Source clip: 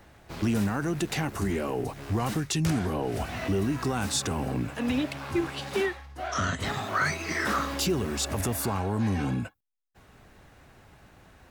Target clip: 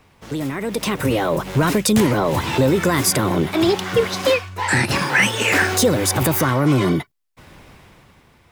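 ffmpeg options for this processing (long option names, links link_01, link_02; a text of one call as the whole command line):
ffmpeg -i in.wav -af "dynaudnorm=framelen=210:gausssize=11:maxgain=11dB,asetrate=59535,aresample=44100" out.wav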